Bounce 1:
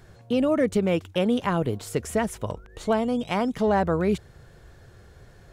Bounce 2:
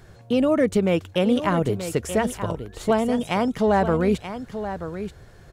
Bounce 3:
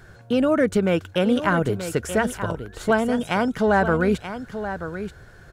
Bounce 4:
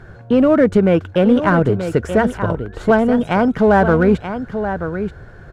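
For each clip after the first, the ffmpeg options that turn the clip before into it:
-af "aecho=1:1:931:0.299,volume=1.33"
-af "equalizer=f=1500:t=o:w=0.29:g=11.5"
-filter_complex "[0:a]lowpass=f=1200:p=1,asplit=2[s0][s1];[s1]volume=16.8,asoftclip=hard,volume=0.0596,volume=0.316[s2];[s0][s2]amix=inputs=2:normalize=0,volume=2.11"

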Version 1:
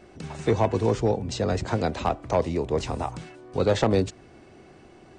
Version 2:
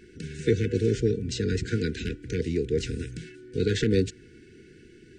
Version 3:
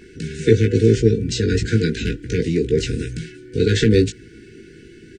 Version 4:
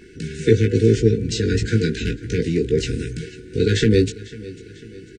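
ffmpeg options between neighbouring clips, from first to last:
-af "afftfilt=real='re*(1-between(b*sr/4096,490,1400))':imag='im*(1-between(b*sr/4096,490,1400))':win_size=4096:overlap=0.75"
-filter_complex "[0:a]asplit=2[s0][s1];[s1]adelay=18,volume=0.531[s2];[s0][s2]amix=inputs=2:normalize=0,volume=2.37"
-af "aecho=1:1:497|994|1491|1988:0.112|0.0527|0.0248|0.0116,volume=0.891"

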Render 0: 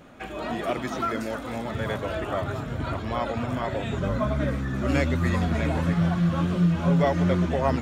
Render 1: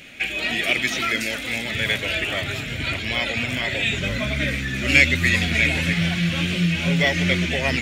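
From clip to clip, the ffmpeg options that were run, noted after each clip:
-af "highshelf=f=1600:t=q:w=3:g=13"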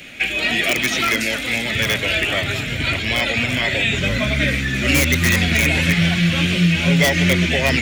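-filter_complex "[0:a]acrossover=split=130|750|2100[s0][s1][s2][s3];[s2]aeval=exprs='(mod(10*val(0)+1,2)-1)/10':c=same[s4];[s3]alimiter=limit=0.133:level=0:latency=1:release=103[s5];[s0][s1][s4][s5]amix=inputs=4:normalize=0,volume=1.78"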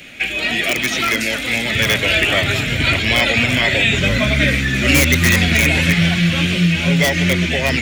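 -af "dynaudnorm=f=270:g=13:m=3.76"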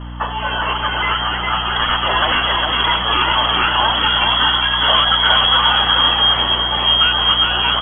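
-af "lowpass=f=2900:t=q:w=0.5098,lowpass=f=2900:t=q:w=0.6013,lowpass=f=2900:t=q:w=0.9,lowpass=f=2900:t=q:w=2.563,afreqshift=-3400,aecho=1:1:408:0.668,aeval=exprs='val(0)+0.0447*(sin(2*PI*60*n/s)+sin(2*PI*2*60*n/s)/2+sin(2*PI*3*60*n/s)/3+sin(2*PI*4*60*n/s)/4+sin(2*PI*5*60*n/s)/5)':c=same,volume=0.891"

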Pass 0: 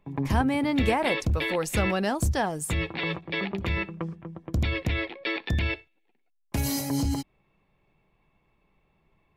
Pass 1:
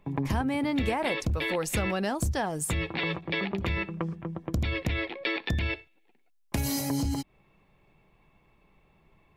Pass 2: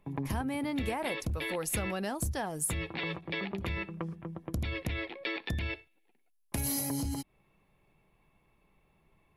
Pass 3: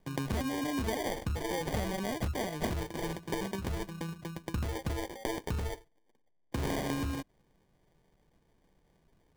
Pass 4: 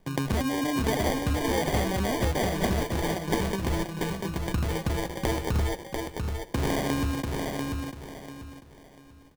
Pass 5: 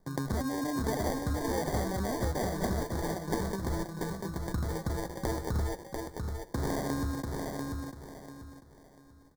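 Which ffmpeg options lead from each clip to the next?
-af "acompressor=threshold=0.02:ratio=2.5,volume=1.78"
-af "equalizer=f=11000:t=o:w=0.33:g=13,volume=0.531"
-af "acrusher=samples=33:mix=1:aa=0.000001"
-af "aecho=1:1:692|1384|2076|2768:0.631|0.189|0.0568|0.017,volume=2"
-af "asuperstop=centerf=2700:order=4:qfactor=1.4,volume=0.562"

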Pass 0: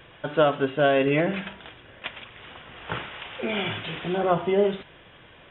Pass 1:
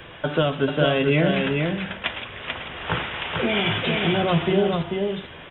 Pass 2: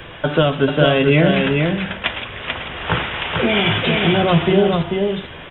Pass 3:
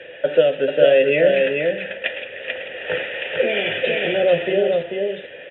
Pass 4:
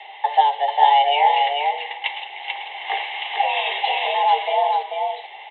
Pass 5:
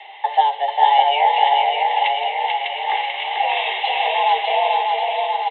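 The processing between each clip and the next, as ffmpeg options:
-filter_complex "[0:a]acrossover=split=220|3000[s0][s1][s2];[s1]acompressor=threshold=0.0282:ratio=4[s3];[s0][s3][s2]amix=inputs=3:normalize=0,asplit=2[s4][s5];[s5]adelay=12,volume=0.224[s6];[s4][s6]amix=inputs=2:normalize=0,aecho=1:1:440:0.631,volume=2.51"
-af "lowshelf=f=62:g=5.5,volume=1.88"
-filter_complex "[0:a]asplit=3[s0][s1][s2];[s0]bandpass=f=530:t=q:w=8,volume=1[s3];[s1]bandpass=f=1840:t=q:w=8,volume=0.501[s4];[s2]bandpass=f=2480:t=q:w=8,volume=0.355[s5];[s3][s4][s5]amix=inputs=3:normalize=0,volume=2.66"
-af "afreqshift=290,volume=0.891"
-af "aecho=1:1:600|1140|1626|2063|2457:0.631|0.398|0.251|0.158|0.1"

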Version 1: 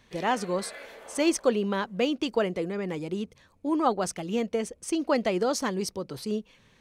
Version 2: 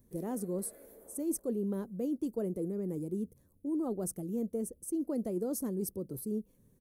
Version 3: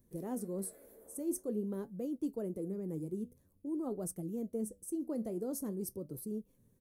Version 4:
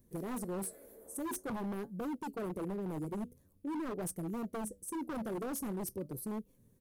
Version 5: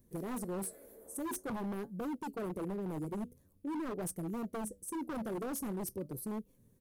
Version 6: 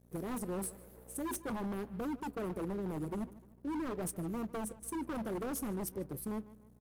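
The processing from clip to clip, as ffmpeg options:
-af "firequalizer=gain_entry='entry(340,0);entry(810,-17);entry(2700,-30);entry(11000,11)':delay=0.05:min_phase=1,areverse,acompressor=threshold=0.0398:ratio=6,areverse,volume=0.794"
-af "flanger=delay=5.3:depth=8.4:regen=71:speed=0.48:shape=triangular,volume=1.12"
-af "aeval=exprs='0.0168*(abs(mod(val(0)/0.0168+3,4)-2)-1)':c=same,volume=1.33"
-af anull
-filter_complex "[0:a]aeval=exprs='val(0)+0.00158*(sin(2*PI*60*n/s)+sin(2*PI*2*60*n/s)/2+sin(2*PI*3*60*n/s)/3+sin(2*PI*4*60*n/s)/4+sin(2*PI*5*60*n/s)/5)':c=same,aeval=exprs='sgn(val(0))*max(abs(val(0))-0.00119,0)':c=same,asplit=2[s0][s1];[s1]adelay=150,lowpass=f=4100:p=1,volume=0.126,asplit=2[s2][s3];[s3]adelay=150,lowpass=f=4100:p=1,volume=0.43,asplit=2[s4][s5];[s5]adelay=150,lowpass=f=4100:p=1,volume=0.43,asplit=2[s6][s7];[s7]adelay=150,lowpass=f=4100:p=1,volume=0.43[s8];[s0][s2][s4][s6][s8]amix=inputs=5:normalize=0,volume=1.12"

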